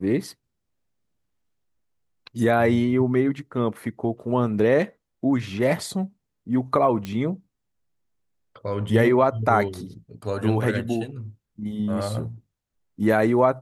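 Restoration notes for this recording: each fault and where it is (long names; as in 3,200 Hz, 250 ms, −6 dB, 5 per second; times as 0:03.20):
0:07.05: click −17 dBFS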